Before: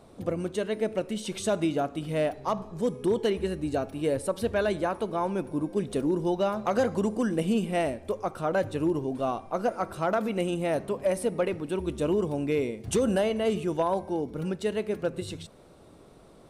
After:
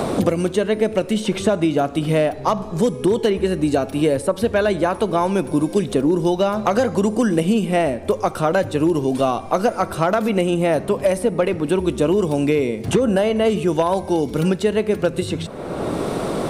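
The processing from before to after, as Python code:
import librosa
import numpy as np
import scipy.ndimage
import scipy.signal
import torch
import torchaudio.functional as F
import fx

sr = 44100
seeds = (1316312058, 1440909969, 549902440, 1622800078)

y = fx.band_squash(x, sr, depth_pct=100)
y = F.gain(torch.from_numpy(y), 8.5).numpy()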